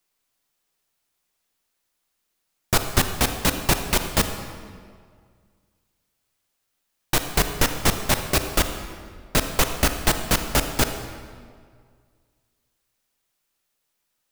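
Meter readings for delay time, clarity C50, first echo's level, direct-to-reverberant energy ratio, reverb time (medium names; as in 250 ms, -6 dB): no echo, 7.5 dB, no echo, 7.0 dB, 2.0 s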